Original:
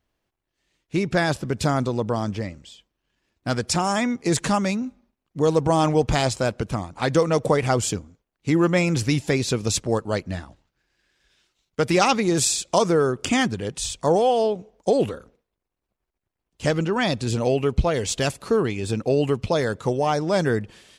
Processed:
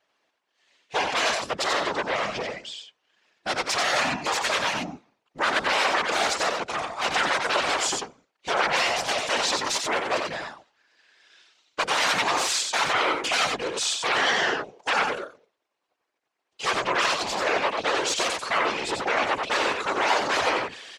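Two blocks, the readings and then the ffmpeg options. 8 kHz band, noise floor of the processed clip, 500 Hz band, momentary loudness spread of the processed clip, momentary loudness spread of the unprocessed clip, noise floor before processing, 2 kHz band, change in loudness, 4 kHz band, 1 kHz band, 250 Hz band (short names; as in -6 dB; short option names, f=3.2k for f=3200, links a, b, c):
-1.0 dB, -79 dBFS, -7.0 dB, 9 LU, 9 LU, -83 dBFS, +6.0 dB, -1.5 dB, +5.0 dB, +1.5 dB, -13.5 dB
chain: -filter_complex "[0:a]aeval=exprs='0.562*sin(PI/2*7.94*val(0)/0.562)':c=same,highpass=560,lowpass=5.9k,asplit=2[a][b];[b]aecho=0:1:91:0.596[c];[a][c]amix=inputs=2:normalize=0,afftfilt=real='hypot(re,im)*cos(2*PI*random(0))':imag='hypot(re,im)*sin(2*PI*random(1))':win_size=512:overlap=0.75,volume=-7.5dB"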